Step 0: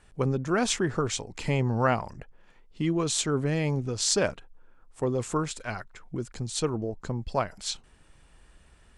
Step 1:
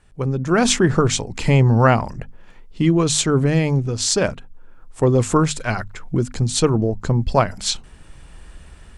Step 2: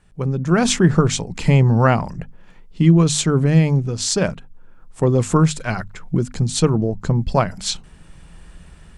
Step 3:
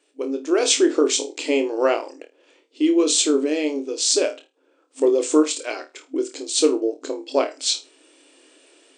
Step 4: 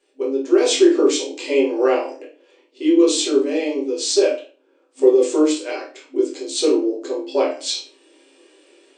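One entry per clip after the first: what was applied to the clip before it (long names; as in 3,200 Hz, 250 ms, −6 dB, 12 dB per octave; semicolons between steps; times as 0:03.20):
bass and treble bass +5 dB, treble 0 dB; mains-hum notches 50/100/150/200/250 Hz; automatic gain control gain up to 11.5 dB
parametric band 170 Hz +9 dB 0.39 octaves; level −1.5 dB
flat-topped bell 1,200 Hz −10 dB; flutter between parallel walls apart 4.5 metres, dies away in 0.23 s; brick-wall band-pass 260–9,100 Hz; level +1.5 dB
convolution reverb RT60 0.35 s, pre-delay 5 ms, DRR −5 dB; level −5.5 dB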